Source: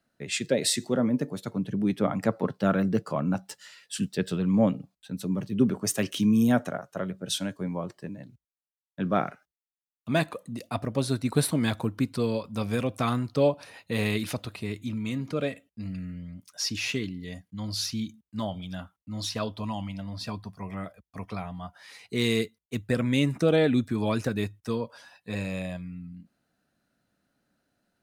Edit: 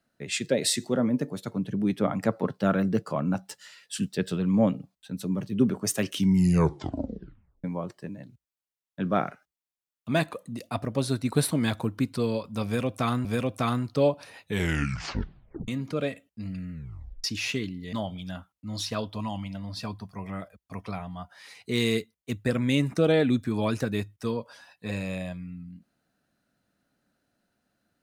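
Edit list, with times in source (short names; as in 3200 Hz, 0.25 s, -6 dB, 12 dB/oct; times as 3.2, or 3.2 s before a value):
6.13 tape stop 1.51 s
12.65–13.25 loop, 2 plays
13.81 tape stop 1.27 s
16.12 tape stop 0.52 s
17.33–18.37 cut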